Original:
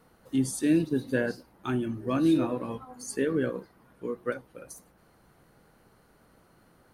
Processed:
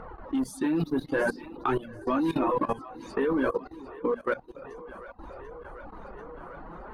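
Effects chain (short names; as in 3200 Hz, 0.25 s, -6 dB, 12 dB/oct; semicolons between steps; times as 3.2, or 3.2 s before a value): low shelf 130 Hz +11.5 dB; low-pass opened by the level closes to 1900 Hz, open at -22 dBFS; in parallel at -6 dB: hard clip -27.5 dBFS, distortion -5 dB; on the sum: graphic EQ 125/1000/8000 Hz -11/+9/-8 dB; flange 0.54 Hz, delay 1.4 ms, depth 6.1 ms, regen -19%; notches 60/120/180/240 Hz; on a send: split-band echo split 420 Hz, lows 0.209 s, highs 0.741 s, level -14.5 dB; on the sum: upward compressor, threshold -35 dBFS; reverb removal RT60 0.51 s; level quantiser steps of 17 dB; mismatched tape noise reduction decoder only; gain +9 dB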